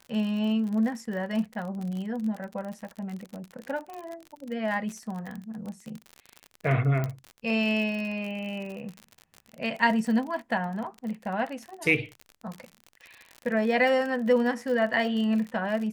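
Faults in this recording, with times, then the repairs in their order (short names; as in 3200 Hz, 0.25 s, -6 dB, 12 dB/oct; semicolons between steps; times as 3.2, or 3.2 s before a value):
crackle 48/s -33 dBFS
3.94 pop
7.04 pop -17 dBFS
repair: de-click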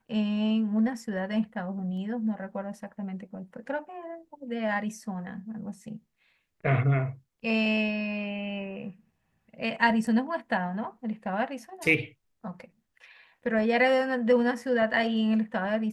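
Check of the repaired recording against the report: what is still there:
none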